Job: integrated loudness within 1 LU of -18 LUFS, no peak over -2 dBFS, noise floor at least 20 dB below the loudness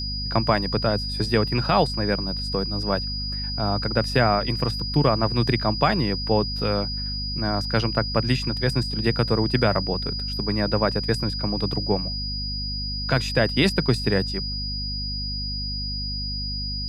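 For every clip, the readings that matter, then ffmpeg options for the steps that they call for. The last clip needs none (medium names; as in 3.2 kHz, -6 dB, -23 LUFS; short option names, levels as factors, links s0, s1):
hum 50 Hz; highest harmonic 250 Hz; hum level -29 dBFS; steady tone 4.9 kHz; tone level -29 dBFS; loudness -23.5 LUFS; peak level -6.0 dBFS; loudness target -18.0 LUFS
-> -af "bandreject=f=50:t=h:w=4,bandreject=f=100:t=h:w=4,bandreject=f=150:t=h:w=4,bandreject=f=200:t=h:w=4,bandreject=f=250:t=h:w=4"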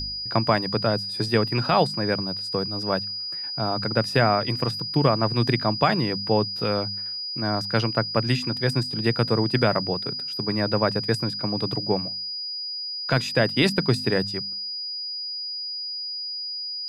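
hum not found; steady tone 4.9 kHz; tone level -29 dBFS
-> -af "bandreject=f=4900:w=30"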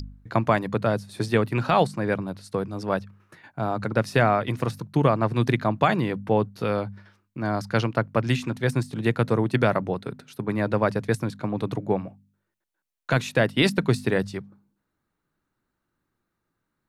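steady tone not found; loudness -25.0 LUFS; peak level -7.0 dBFS; loudness target -18.0 LUFS
-> -af "volume=2.24,alimiter=limit=0.794:level=0:latency=1"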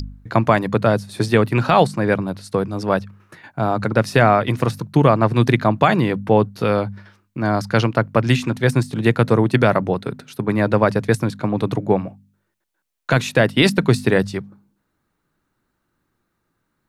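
loudness -18.5 LUFS; peak level -2.0 dBFS; noise floor -73 dBFS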